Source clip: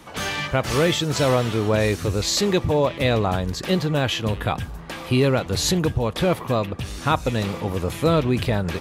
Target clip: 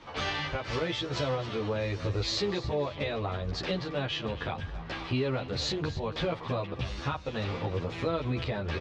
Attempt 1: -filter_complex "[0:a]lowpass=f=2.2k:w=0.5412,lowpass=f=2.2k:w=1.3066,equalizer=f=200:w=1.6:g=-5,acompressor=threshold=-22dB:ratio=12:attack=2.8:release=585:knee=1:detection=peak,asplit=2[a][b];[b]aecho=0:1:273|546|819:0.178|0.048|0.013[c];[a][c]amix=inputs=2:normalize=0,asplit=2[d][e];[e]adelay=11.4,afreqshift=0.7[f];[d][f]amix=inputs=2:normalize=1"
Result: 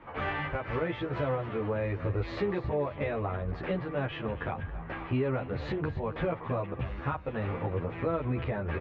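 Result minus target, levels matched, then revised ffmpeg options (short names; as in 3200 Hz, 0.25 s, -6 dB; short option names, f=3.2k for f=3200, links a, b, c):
4000 Hz band -13.5 dB
-filter_complex "[0:a]lowpass=f=5k:w=0.5412,lowpass=f=5k:w=1.3066,equalizer=f=200:w=1.6:g=-5,acompressor=threshold=-22dB:ratio=12:attack=2.8:release=585:knee=1:detection=peak,asplit=2[a][b];[b]aecho=0:1:273|546|819:0.178|0.048|0.013[c];[a][c]amix=inputs=2:normalize=0,asplit=2[d][e];[e]adelay=11.4,afreqshift=0.7[f];[d][f]amix=inputs=2:normalize=1"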